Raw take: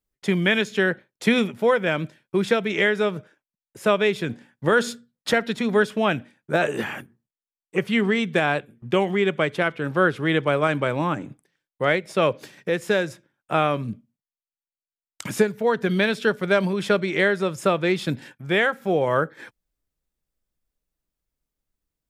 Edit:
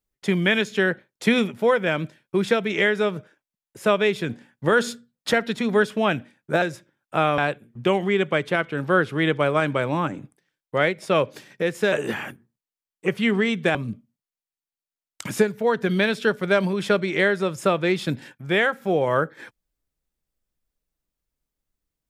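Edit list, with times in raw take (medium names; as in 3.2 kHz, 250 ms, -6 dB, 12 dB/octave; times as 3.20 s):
6.62–8.45 s: swap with 12.99–13.75 s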